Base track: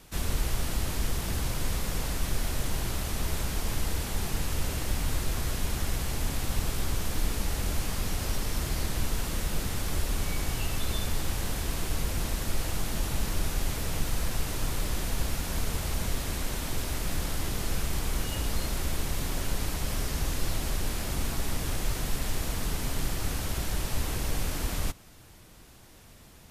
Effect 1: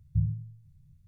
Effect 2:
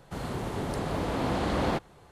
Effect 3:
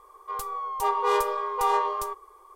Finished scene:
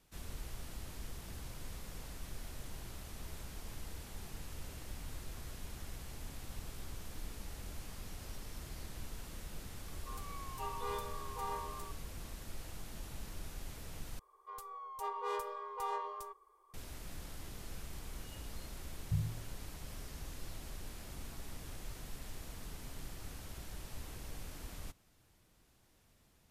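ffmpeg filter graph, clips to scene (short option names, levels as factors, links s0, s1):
-filter_complex "[3:a]asplit=2[s0][s1];[0:a]volume=0.15[s2];[1:a]highpass=57[s3];[s2]asplit=2[s4][s5];[s4]atrim=end=14.194[s6];[s1]atrim=end=2.55,asetpts=PTS-STARTPTS,volume=0.178[s7];[s5]atrim=start=16.736[s8];[s0]atrim=end=2.55,asetpts=PTS-STARTPTS,volume=0.133,afade=t=in:d=0.004:c=hsin,afade=t=out:st=2.546:d=0.004:c=hsin,adelay=431298S[s9];[s3]atrim=end=1.07,asetpts=PTS-STARTPTS,volume=0.422,afade=t=in:d=0.004:c=hsin,afade=t=out:st=1.066:d=0.004:c=hsin,adelay=18960[s10];[s6][s7]acrossfade=d=0.004:c1=hsin:c2=hsin[s11];[s11][s8]acrossfade=d=0.004:c1=hsin:c2=hsin[s12];[s12][s9][s10]amix=inputs=3:normalize=0"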